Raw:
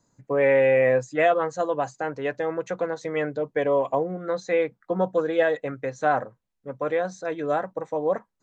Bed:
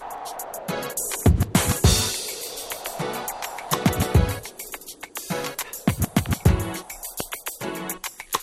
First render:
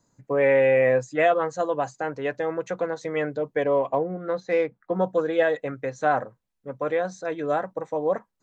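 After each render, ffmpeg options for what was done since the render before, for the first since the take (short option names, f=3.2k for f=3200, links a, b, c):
-filter_complex "[0:a]asettb=1/sr,asplit=3[a][b][c];[a]atrim=end=3.634[d];[b]atrim=start=3.63:end=4.94,asetpts=PTS-STARTPTS,afade=t=in:d=0.004:c=qsin,afade=t=out:st=1.306:d=0.004:c=qsin,adynamicsmooth=sensitivity=1.5:basefreq=3.7k[e];[c]atrim=start=4.936[f];[d][e]acrossfade=d=0.004:c1=hsin:c2=qsin[g];[g][f]acrossfade=d=0.004:c1=qsin:c2=hsin"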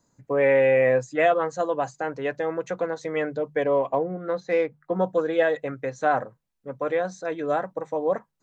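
-af "bandreject=f=50:t=h:w=6,bandreject=f=100:t=h:w=6,bandreject=f=150:t=h:w=6"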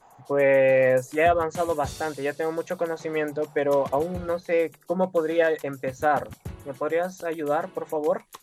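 -filter_complex "[1:a]volume=-19.5dB[a];[0:a][a]amix=inputs=2:normalize=0"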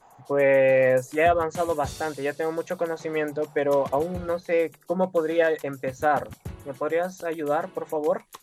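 -af anull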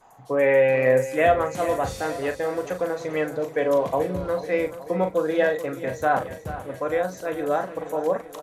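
-filter_complex "[0:a]asplit=2[a][b];[b]adelay=39,volume=-8dB[c];[a][c]amix=inputs=2:normalize=0,aecho=1:1:433|866|1299|1732|2165|2598:0.211|0.118|0.0663|0.0371|0.0208|0.0116"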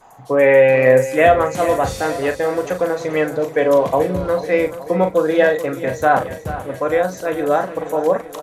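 -af "volume=7dB,alimiter=limit=-1dB:level=0:latency=1"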